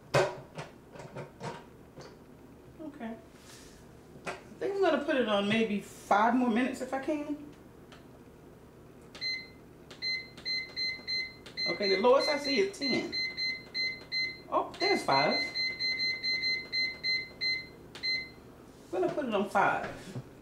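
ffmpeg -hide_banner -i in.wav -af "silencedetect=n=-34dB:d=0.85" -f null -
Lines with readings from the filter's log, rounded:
silence_start: 1.55
silence_end: 2.85 | silence_duration: 1.30
silence_start: 3.13
silence_end: 4.27 | silence_duration: 1.14
silence_start: 7.34
silence_end: 9.16 | silence_duration: 1.81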